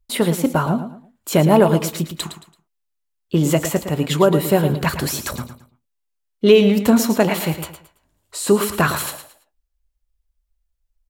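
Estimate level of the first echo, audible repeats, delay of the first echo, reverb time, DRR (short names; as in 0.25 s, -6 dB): -10.5 dB, 3, 0.111 s, none, none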